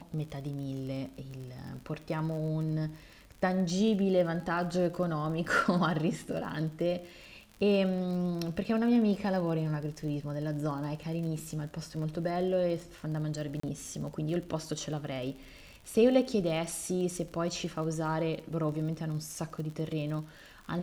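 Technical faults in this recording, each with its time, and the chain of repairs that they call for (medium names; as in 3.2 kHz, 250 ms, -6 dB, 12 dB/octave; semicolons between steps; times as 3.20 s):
crackle 46 per s -39 dBFS
13.60–13.63 s: dropout 34 ms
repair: de-click; interpolate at 13.60 s, 34 ms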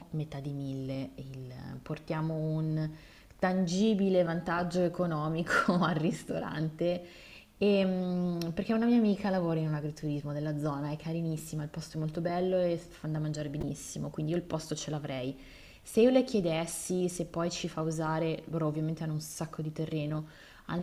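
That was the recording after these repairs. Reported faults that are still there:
nothing left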